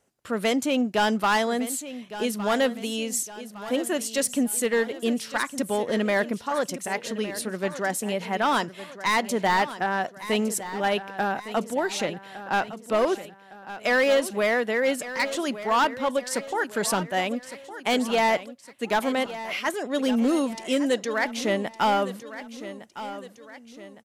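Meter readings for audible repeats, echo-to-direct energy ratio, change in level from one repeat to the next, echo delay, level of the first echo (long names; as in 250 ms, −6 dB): 3, −12.5 dB, −6.5 dB, 1,160 ms, −13.5 dB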